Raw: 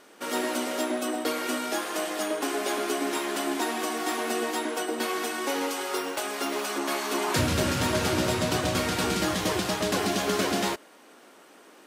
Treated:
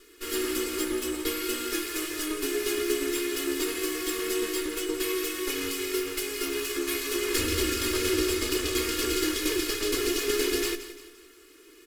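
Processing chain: comb filter that takes the minimum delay 2.8 ms; peaking EQ 13 kHz +5 dB 0.64 oct; static phaser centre 320 Hz, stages 4; comb 2.4 ms, depth 66%; on a send: feedback delay 173 ms, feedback 43%, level -13 dB

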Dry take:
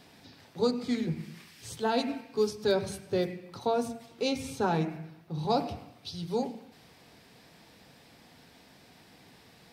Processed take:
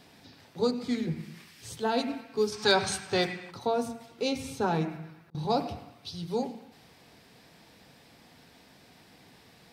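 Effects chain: band-passed feedback delay 108 ms, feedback 73%, band-pass 1.8 kHz, level -17 dB; 2.53–3.51 s: time-frequency box 710–9300 Hz +11 dB; 4.83–5.35 s: slow attack 580 ms

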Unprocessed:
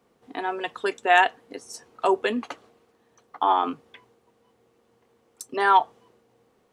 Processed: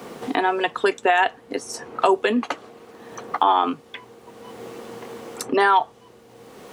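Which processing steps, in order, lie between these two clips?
peak limiter -11 dBFS, peak gain reduction 7 dB; three bands compressed up and down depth 70%; trim +6.5 dB

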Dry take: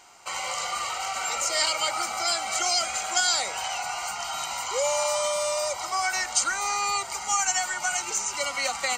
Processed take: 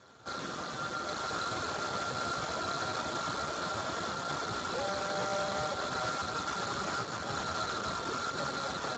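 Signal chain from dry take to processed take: sorted samples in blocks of 32 samples; low-pass 5.7 kHz 24 dB/octave; peaking EQ 280 Hz +4 dB 1.3 oct; peak limiter -22.5 dBFS, peak gain reduction 11 dB; level rider gain up to 5 dB; saturation -27.5 dBFS, distortion -11 dB; on a send: two-band feedback delay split 2.1 kHz, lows 448 ms, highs 221 ms, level -10 dB; on the sum: sample-rate reducer 2.7 kHz, jitter 20%; feedback echo behind a high-pass 198 ms, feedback 63%, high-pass 3.7 kHz, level -19 dB; spectral freeze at 0.36 s, 0.70 s; trim -2 dB; Speex 8 kbps 16 kHz

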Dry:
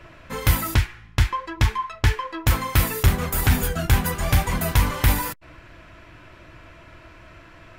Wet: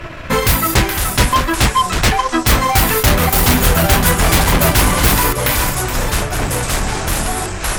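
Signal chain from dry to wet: thinning echo 422 ms, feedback 27%, high-pass 960 Hz, level -8 dB; transient shaper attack +2 dB, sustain -7 dB; in parallel at -4 dB: sine folder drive 18 dB, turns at -4.5 dBFS; on the sum: ever faster or slower copies 351 ms, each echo -5 st, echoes 3, each echo -6 dB; trim -2 dB

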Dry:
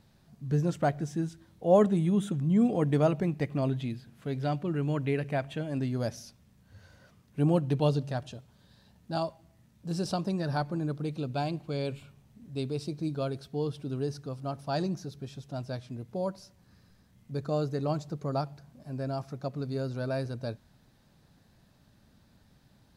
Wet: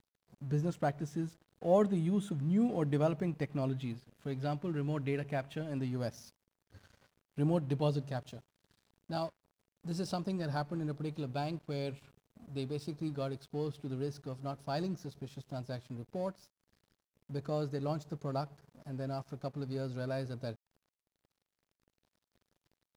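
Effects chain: in parallel at +2 dB: compression, threshold -43 dBFS, peak gain reduction 24 dB; on the sum: crossover distortion -48.5 dBFS; trim -6.5 dB

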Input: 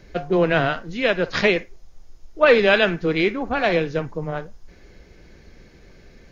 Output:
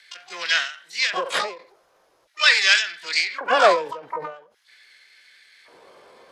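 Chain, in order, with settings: low-pass 4.4 kHz 12 dB/octave; bass shelf 140 Hz +11 dB; LFO high-pass square 0.44 Hz 540–1900 Hz; harmony voices +12 st -3 dB; endings held to a fixed fall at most 120 dB/s; trim -1 dB

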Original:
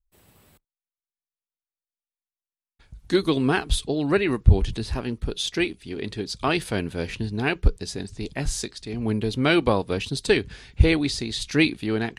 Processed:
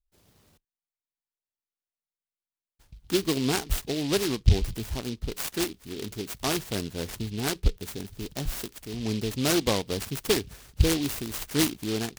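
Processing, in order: delay time shaken by noise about 3.5 kHz, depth 0.14 ms; trim -4.5 dB

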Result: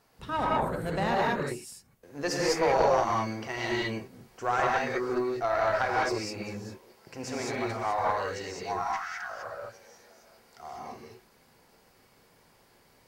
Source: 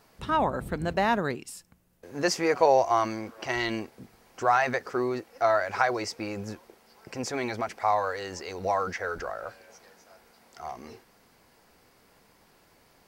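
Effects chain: 8.63–9.30 s: brick-wall FIR high-pass 670 Hz; gated-style reverb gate 230 ms rising, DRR -3.5 dB; valve stage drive 11 dB, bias 0.5; trim -4 dB

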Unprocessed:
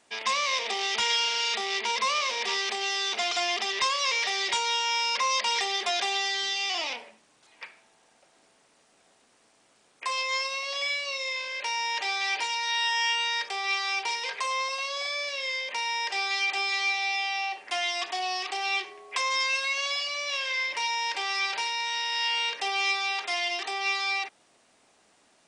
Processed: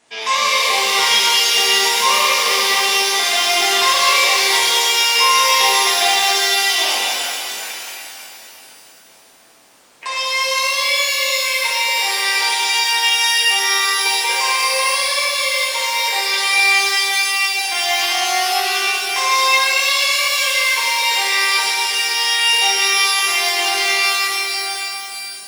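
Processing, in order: pitch-shifted reverb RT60 3.3 s, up +12 st, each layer -8 dB, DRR -8.5 dB; trim +3 dB

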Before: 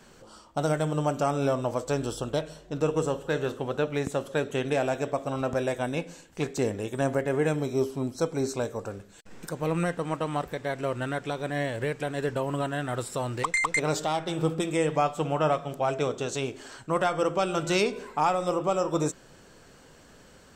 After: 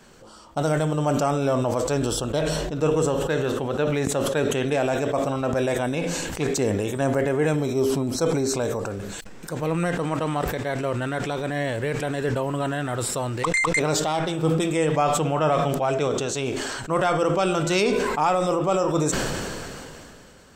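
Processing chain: decay stretcher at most 22 dB/s; trim +2.5 dB

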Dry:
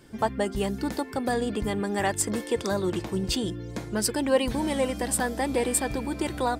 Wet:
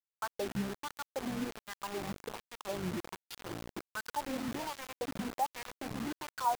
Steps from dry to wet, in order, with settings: high-pass 45 Hz 12 dB/octave; in parallel at 0 dB: peak limiter -18 dBFS, peak gain reduction 7.5 dB; on the sum: ten-band graphic EQ 125 Hz +8 dB, 250 Hz -6 dB, 500 Hz -5 dB, 1 kHz +4 dB, 2 kHz -6 dB, 4 kHz +7 dB, 8 kHz -10 dB; wah-wah 1.3 Hz 210–1600 Hz, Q 4.4; thinning echo 276 ms, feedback 45%, high-pass 990 Hz, level -20 dB; word length cut 6-bit, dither none; trim -4 dB

